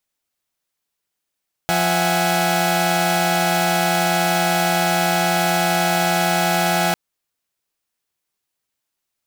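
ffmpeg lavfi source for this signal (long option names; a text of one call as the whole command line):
ffmpeg -f lavfi -i "aevalsrc='0.106*((2*mod(174.61*t,1)-1)+(2*mod(659.26*t,1)-1)+(2*mod(739.99*t,1)-1)+(2*mod(830.61*t,1)-1))':duration=5.25:sample_rate=44100" out.wav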